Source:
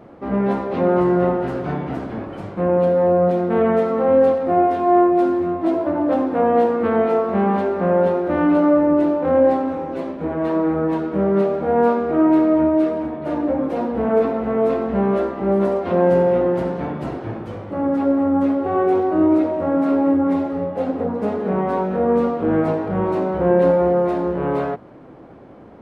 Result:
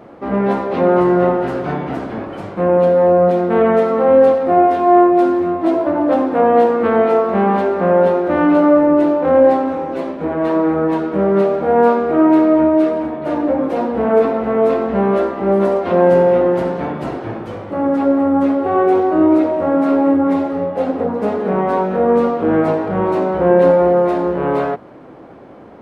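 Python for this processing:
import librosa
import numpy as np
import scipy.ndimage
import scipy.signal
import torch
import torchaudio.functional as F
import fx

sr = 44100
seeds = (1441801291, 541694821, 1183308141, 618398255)

y = fx.low_shelf(x, sr, hz=210.0, db=-7.0)
y = y * librosa.db_to_amplitude(5.5)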